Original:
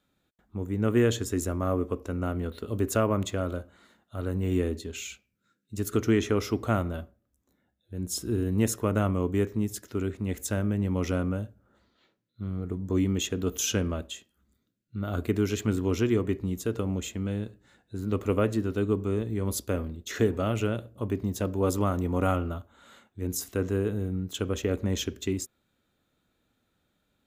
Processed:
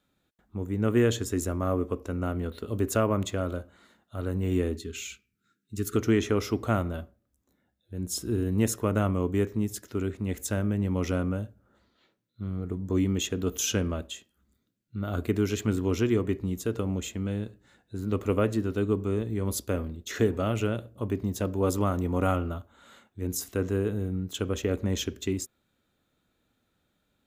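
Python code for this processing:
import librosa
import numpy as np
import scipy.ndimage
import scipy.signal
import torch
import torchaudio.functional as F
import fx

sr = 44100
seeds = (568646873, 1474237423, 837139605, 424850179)

y = fx.brickwall_bandstop(x, sr, low_hz=480.0, high_hz=1100.0, at=(4.76, 5.96))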